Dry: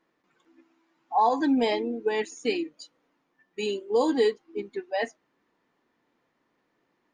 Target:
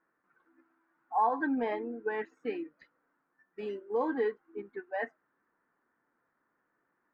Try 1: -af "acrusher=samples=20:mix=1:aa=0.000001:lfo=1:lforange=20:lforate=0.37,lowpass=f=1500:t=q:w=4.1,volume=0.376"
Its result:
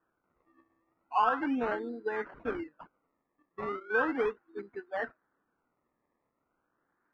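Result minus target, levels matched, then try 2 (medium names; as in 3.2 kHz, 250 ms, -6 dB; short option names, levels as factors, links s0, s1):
decimation with a swept rate: distortion +15 dB
-af "acrusher=samples=4:mix=1:aa=0.000001:lfo=1:lforange=4:lforate=0.37,lowpass=f=1500:t=q:w=4.1,volume=0.376"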